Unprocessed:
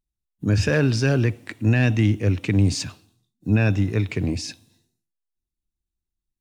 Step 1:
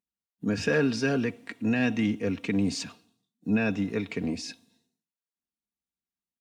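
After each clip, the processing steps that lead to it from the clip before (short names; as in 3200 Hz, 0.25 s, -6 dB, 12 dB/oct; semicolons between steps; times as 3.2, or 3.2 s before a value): HPF 160 Hz 12 dB/oct; high shelf 6700 Hz -7 dB; comb 4.3 ms, depth 55%; gain -4.5 dB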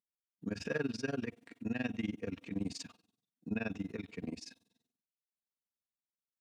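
AM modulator 21 Hz, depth 90%; gain -7.5 dB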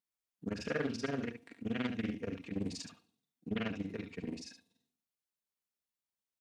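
echo 72 ms -9 dB; Doppler distortion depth 0.4 ms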